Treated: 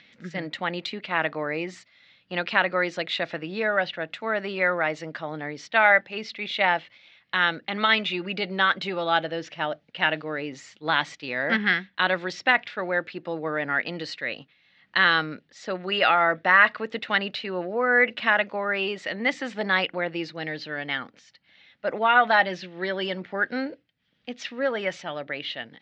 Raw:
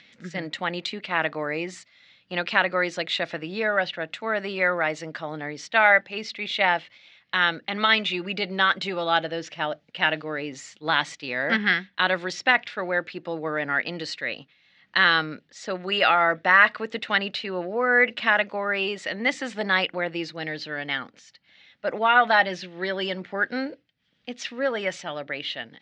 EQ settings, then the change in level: air absorption 78 m; 0.0 dB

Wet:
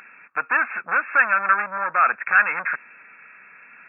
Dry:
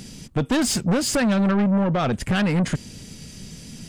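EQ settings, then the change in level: resonant high-pass 1400 Hz, resonance Q 3.3; brick-wall FIR low-pass 2700 Hz; notch 2000 Hz, Q 17; +5.0 dB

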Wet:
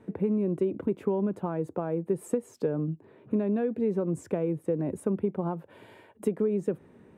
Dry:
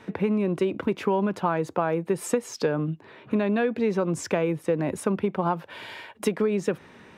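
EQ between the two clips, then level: EQ curve 420 Hz 0 dB, 990 Hz -10 dB, 5500 Hz -20 dB, 8100 Hz -8 dB; -2.5 dB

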